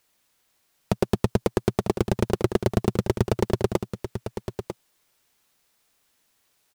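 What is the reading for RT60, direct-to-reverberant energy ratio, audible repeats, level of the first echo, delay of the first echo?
none, none, 1, -9.5 dB, 0.947 s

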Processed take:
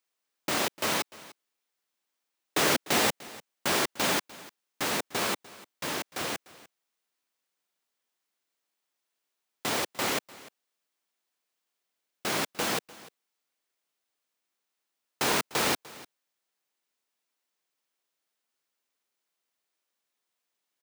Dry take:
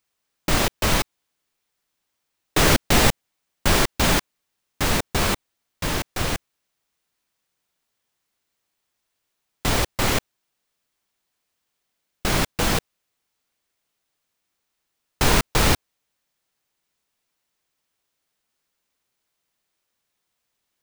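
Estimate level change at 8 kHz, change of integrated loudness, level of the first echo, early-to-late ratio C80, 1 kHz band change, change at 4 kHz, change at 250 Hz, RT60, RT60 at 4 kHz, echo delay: -6.0 dB, -7.0 dB, -20.0 dB, none, -6.0 dB, -6.0 dB, -9.0 dB, none, none, 0.298 s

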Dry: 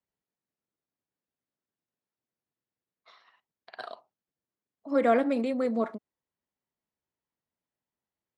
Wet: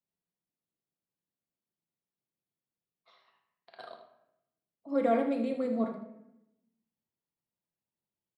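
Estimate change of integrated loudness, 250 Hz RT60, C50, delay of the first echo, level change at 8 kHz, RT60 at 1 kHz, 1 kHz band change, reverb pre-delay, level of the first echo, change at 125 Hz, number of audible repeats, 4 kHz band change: -3.5 dB, 1.1 s, 6.5 dB, 79 ms, n/a, 0.80 s, -4.5 dB, 6 ms, -10.5 dB, n/a, 1, -6.0 dB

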